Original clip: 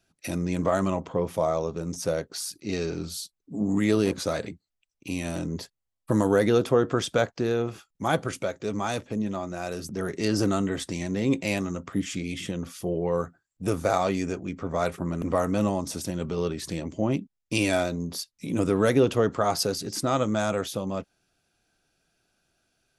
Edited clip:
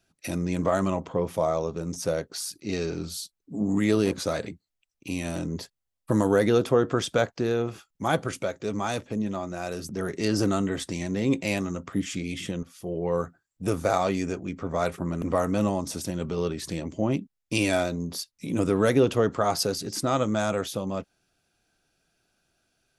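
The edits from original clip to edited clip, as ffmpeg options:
-filter_complex "[0:a]asplit=2[a][b];[a]atrim=end=12.63,asetpts=PTS-STARTPTS,afade=t=out:st=12.626:d=0.004:c=hsin:silence=0.211349[c];[b]atrim=start=12.63,asetpts=PTS-STARTPTS,afade=t=in:d=0.49:silence=0.211349[d];[c][d]concat=n=2:v=0:a=1"

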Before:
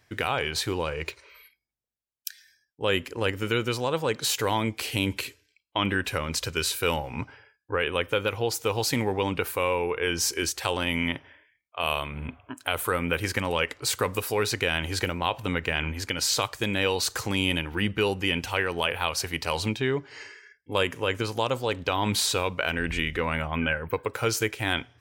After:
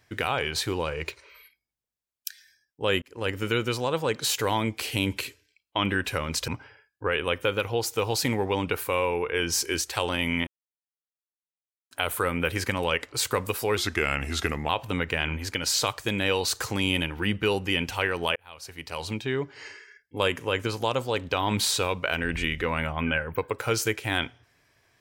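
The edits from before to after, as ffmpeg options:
-filter_complex "[0:a]asplit=8[a][b][c][d][e][f][g][h];[a]atrim=end=3.02,asetpts=PTS-STARTPTS,afade=t=out:st=3.016:d=0.004:c=hsin[i];[b]atrim=start=3.02:end=6.482,asetpts=PTS-STARTPTS,afade=t=in:d=0.32[j];[c]atrim=start=7.158:end=11.15,asetpts=PTS-STARTPTS,afade=t=out:st=3.988:d=0.004:c=hsin[k];[d]atrim=start=11.15:end=12.59,asetpts=PTS-STARTPTS,volume=0[l];[e]atrim=start=12.59:end=14.454,asetpts=PTS-STARTPTS,afade=t=in:d=0.004:c=hsin[m];[f]atrim=start=14.45:end=15.24,asetpts=PTS-STARTPTS,asetrate=37926,aresample=44100,atrim=end_sample=40510,asetpts=PTS-STARTPTS[n];[g]atrim=start=15.236:end=18.91,asetpts=PTS-STARTPTS,afade=t=out:st=3.67:d=0.004:c=hsin[o];[h]atrim=start=18.91,asetpts=PTS-STARTPTS,afade=t=in:d=1.24[p];[i][j]concat=n=2:v=0:a=1[q];[k][l][m]concat=n=3:v=0:a=1[r];[q][r]acrossfade=d=0.004:c1=hsin:c2=hsin[s];[s][n]acrossfade=d=0.004:c1=hsin:c2=hsin[t];[o][p]concat=n=2:v=0:a=1[u];[t][u]acrossfade=d=0.004:c1=hsin:c2=hsin"

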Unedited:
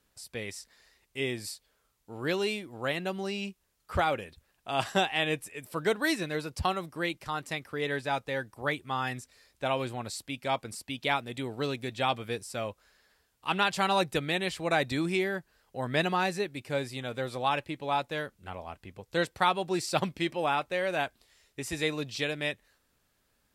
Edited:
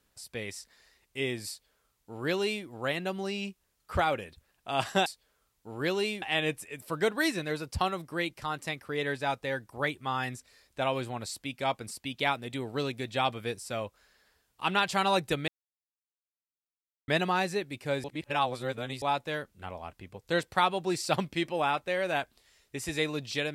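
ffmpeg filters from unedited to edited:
-filter_complex "[0:a]asplit=7[a][b][c][d][e][f][g];[a]atrim=end=5.062[h];[b]atrim=start=1.488:end=2.652[i];[c]atrim=start=5.058:end=14.32,asetpts=PTS-STARTPTS,afade=t=out:st=9.258:d=0.004:c=hsin[j];[d]atrim=start=14.32:end=15.92,asetpts=PTS-STARTPTS,volume=0[k];[e]atrim=start=15.92:end=16.882,asetpts=PTS-STARTPTS,afade=t=in:d=0.004:c=hsin[l];[f]atrim=start=16.878:end=17.862,asetpts=PTS-STARTPTS,areverse[m];[g]atrim=start=17.858[n];[h][i]acrossfade=d=0.004:c1=hsin:c2=hsin[o];[j][k][l]concat=n=3:v=0:a=1[p];[o][p]acrossfade=d=0.004:c1=hsin:c2=hsin[q];[q][m]acrossfade=d=0.004:c1=hsin:c2=hsin[r];[r][n]acrossfade=d=0.004:c1=hsin:c2=hsin"

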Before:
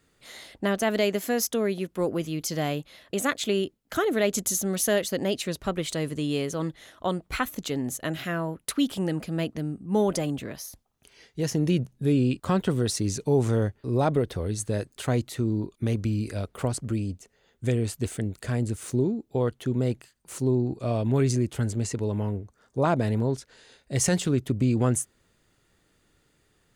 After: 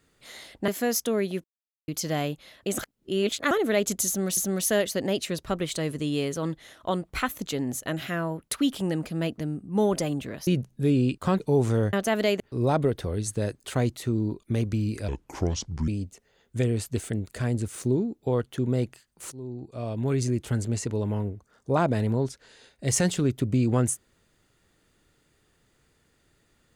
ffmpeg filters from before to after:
-filter_complex "[0:a]asplit=14[a][b][c][d][e][f][g][h][i][j][k][l][m][n];[a]atrim=end=0.682[o];[b]atrim=start=1.148:end=1.91,asetpts=PTS-STARTPTS,afade=t=out:st=0.758:d=0.004:c=hsin[p];[c]atrim=start=1.91:end=2.35,asetpts=PTS-STARTPTS,volume=0[q];[d]atrim=start=2.35:end=3.252,asetpts=PTS-STARTPTS,afade=t=in:d=0.004:c=hsin[r];[e]atrim=start=3.248:end=3.982,asetpts=PTS-STARTPTS,areverse[s];[f]atrim=start=3.978:end=4.842[t];[g]atrim=start=4.538:end=10.642[u];[h]atrim=start=11.688:end=12.622[v];[i]atrim=start=13.188:end=13.722[w];[j]atrim=start=0.678:end=1.152[x];[k]atrim=start=13.718:end=16.404[y];[l]atrim=start=16.4:end=16.96,asetpts=PTS-STARTPTS,asetrate=30870,aresample=44100[z];[m]atrim=start=16.956:end=20.4,asetpts=PTS-STARTPTS,afade=t=out:st=3.44:d=0.004:c=hsin:silence=0.105925[aa];[n]atrim=start=20.4,asetpts=PTS-STARTPTS,afade=t=in:d=1.2:silence=0.105925[ab];[p][q][r]concat=n=3:v=0:a=1[ac];[o][ac]acrossfade=d=0.004:c1=hsin:c2=hsin[ad];[ad][s]acrossfade=d=0.004:c1=hsin:c2=hsin[ae];[ae][t]acrossfade=d=0.004:c1=hsin:c2=hsin[af];[af][u]acrossfade=d=0.004:c1=hsin:c2=hsin[ag];[ag][v]acrossfade=d=0.004:c1=hsin:c2=hsin[ah];[ah][w]acrossfade=d=0.004:c1=hsin:c2=hsin[ai];[ai][x]acrossfade=d=0.004:c1=hsin:c2=hsin[aj];[aj][y]acrossfade=d=0.004:c1=hsin:c2=hsin[ak];[ak][z]acrossfade=d=0.004:c1=hsin:c2=hsin[al];[aa][ab]concat=n=2:v=0:a=1[am];[al][am]acrossfade=d=0.004:c1=hsin:c2=hsin"

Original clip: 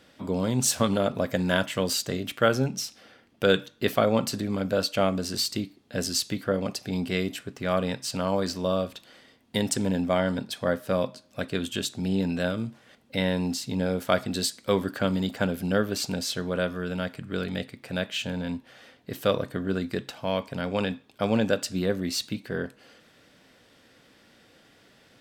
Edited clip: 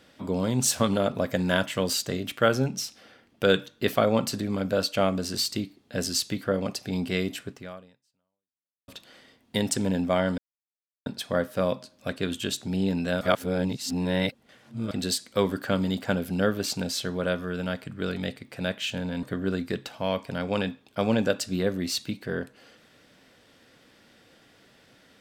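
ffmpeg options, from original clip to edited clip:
-filter_complex "[0:a]asplit=6[a][b][c][d][e][f];[a]atrim=end=8.88,asetpts=PTS-STARTPTS,afade=t=out:st=7.51:d=1.37:c=exp[g];[b]atrim=start=8.88:end=10.38,asetpts=PTS-STARTPTS,afade=t=in:d=0.004:c=hsin,afade=t=out:st=1.496:d=0.004:c=hsin,apad=pad_dur=0.68[h];[c]atrim=start=10.38:end=12.532,asetpts=PTS-STARTPTS,afade=t=in:d=0.004:c=hsin[i];[d]atrim=start=12.528:end=14.232,asetpts=PTS-STARTPTS,areverse[j];[e]atrim=start=14.228:end=18.552[k];[f]atrim=start=19.458[l];[g][h][i]concat=n=3:v=0:a=1[m];[m][j]acrossfade=d=0.004:c1=hsin:c2=hsin[n];[n][k]acrossfade=d=0.004:c1=hsin:c2=hsin[o];[o][l]acrossfade=d=0.004:c1=hsin:c2=hsin"

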